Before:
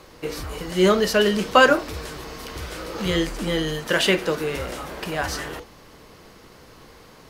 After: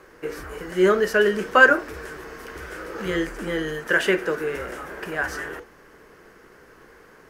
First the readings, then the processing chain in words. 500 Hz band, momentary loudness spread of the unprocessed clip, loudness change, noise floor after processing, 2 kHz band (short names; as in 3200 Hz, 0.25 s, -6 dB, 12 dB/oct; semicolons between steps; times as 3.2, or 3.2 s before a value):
-0.5 dB, 17 LU, +0.5 dB, -51 dBFS, +4.0 dB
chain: fifteen-band EQ 100 Hz -5 dB, 400 Hz +8 dB, 1600 Hz +12 dB, 4000 Hz -8 dB; gain -6.5 dB